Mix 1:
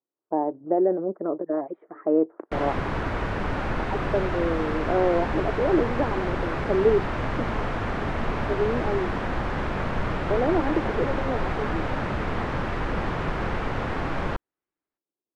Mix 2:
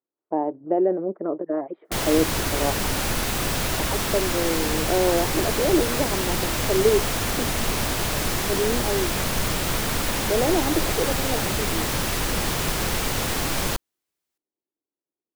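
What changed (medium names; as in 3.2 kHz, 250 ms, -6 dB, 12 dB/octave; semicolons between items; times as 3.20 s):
background: entry -0.60 s; master: remove Chebyshev low-pass 1.5 kHz, order 2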